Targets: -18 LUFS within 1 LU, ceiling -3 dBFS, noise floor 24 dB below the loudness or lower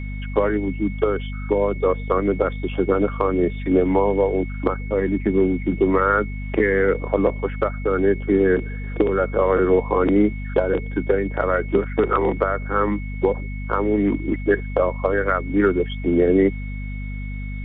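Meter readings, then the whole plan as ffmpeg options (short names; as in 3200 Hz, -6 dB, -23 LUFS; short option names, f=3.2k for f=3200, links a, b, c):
hum 50 Hz; harmonics up to 250 Hz; hum level -26 dBFS; steady tone 2200 Hz; tone level -39 dBFS; loudness -21.0 LUFS; peak -5.0 dBFS; loudness target -18.0 LUFS
-> -af "bandreject=f=50:t=h:w=4,bandreject=f=100:t=h:w=4,bandreject=f=150:t=h:w=4,bandreject=f=200:t=h:w=4,bandreject=f=250:t=h:w=4"
-af "bandreject=f=2.2k:w=30"
-af "volume=3dB,alimiter=limit=-3dB:level=0:latency=1"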